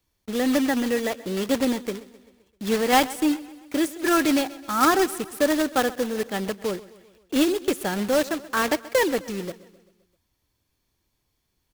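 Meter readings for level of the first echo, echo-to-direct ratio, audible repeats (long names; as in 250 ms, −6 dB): −19.0 dB, −17.5 dB, 4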